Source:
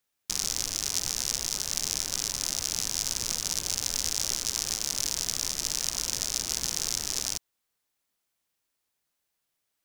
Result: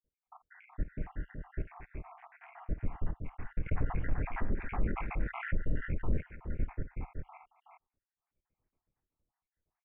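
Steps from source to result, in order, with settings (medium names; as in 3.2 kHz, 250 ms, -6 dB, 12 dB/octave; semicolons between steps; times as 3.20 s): random holes in the spectrogram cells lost 81%; steep low-pass 2.4 kHz 72 dB/octave; tilt EQ -4.5 dB/octave; peak limiter -22 dBFS, peak gain reduction 7 dB; multi-tap echo 50/224/373/398 ms -16/-16/-7/-8.5 dB; 3.66–6.21 s: level flattener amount 50%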